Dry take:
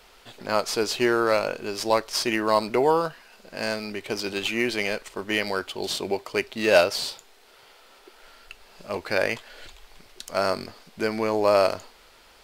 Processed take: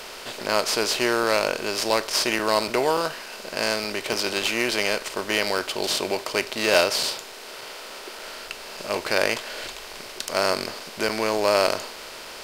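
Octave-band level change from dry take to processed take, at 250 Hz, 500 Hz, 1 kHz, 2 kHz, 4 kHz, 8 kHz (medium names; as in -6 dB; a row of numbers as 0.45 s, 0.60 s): -1.0 dB, -0.5 dB, +0.5 dB, +3.0 dB, +5.5 dB, +6.5 dB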